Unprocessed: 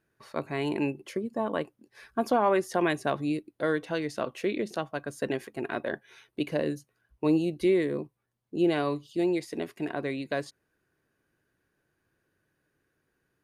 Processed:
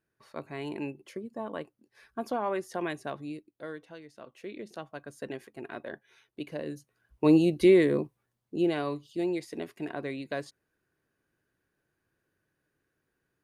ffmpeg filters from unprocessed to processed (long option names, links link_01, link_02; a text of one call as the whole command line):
ffmpeg -i in.wav -af "volume=16.5dB,afade=type=out:start_time=2.86:duration=1.26:silence=0.251189,afade=type=in:start_time=4.12:duration=0.78:silence=0.281838,afade=type=in:start_time=6.65:duration=0.76:silence=0.237137,afade=type=out:start_time=7.93:duration=0.82:silence=0.398107" out.wav